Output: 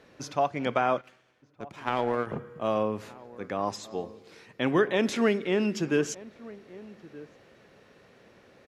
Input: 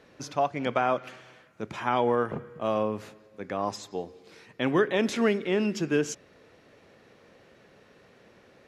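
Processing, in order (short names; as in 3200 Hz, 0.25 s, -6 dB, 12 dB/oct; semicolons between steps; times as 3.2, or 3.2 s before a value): 1.01–2.27 power-law curve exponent 1.4; outdoor echo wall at 210 m, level -19 dB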